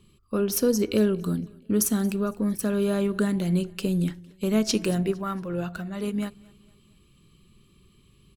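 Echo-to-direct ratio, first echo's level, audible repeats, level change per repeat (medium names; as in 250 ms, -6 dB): -23.0 dB, -24.0 dB, 2, -7.0 dB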